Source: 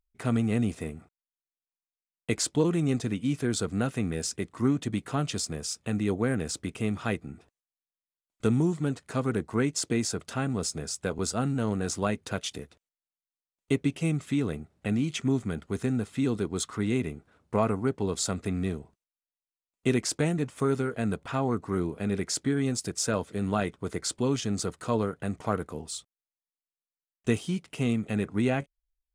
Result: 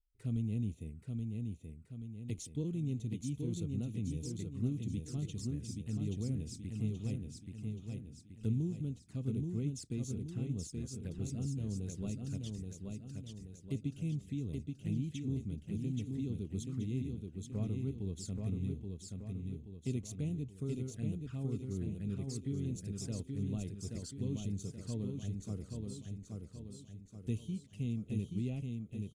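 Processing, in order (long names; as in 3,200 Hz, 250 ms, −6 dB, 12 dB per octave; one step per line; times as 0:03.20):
guitar amp tone stack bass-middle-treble 10-0-1
flanger swept by the level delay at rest 2.6 ms, full sweep at −43 dBFS
on a send: repeating echo 828 ms, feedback 48%, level −4 dB
on the sum: level +6 dB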